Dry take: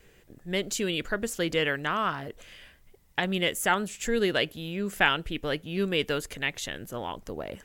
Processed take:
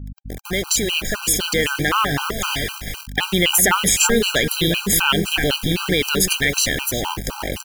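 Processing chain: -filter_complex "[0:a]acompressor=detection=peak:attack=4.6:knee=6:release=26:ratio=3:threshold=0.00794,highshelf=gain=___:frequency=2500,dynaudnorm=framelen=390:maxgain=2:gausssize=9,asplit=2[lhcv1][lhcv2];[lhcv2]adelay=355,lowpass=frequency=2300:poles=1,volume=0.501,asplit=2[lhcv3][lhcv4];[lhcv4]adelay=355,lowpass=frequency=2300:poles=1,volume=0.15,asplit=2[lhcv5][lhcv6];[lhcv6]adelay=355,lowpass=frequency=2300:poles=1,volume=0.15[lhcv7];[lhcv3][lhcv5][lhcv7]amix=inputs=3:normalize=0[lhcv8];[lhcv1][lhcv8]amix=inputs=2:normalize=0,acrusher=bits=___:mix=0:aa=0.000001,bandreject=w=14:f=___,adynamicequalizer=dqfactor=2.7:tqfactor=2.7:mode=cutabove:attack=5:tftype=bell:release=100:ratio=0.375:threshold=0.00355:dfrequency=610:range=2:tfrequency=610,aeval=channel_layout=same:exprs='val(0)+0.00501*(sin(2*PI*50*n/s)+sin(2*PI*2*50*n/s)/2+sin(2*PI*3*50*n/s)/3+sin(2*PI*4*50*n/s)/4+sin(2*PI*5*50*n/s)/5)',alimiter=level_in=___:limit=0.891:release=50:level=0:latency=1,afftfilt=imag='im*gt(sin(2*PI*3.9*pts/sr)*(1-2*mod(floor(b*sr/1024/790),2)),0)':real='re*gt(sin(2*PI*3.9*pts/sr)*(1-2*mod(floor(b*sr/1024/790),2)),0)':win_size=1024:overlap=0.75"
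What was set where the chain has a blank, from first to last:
11.5, 6, 7800, 6.31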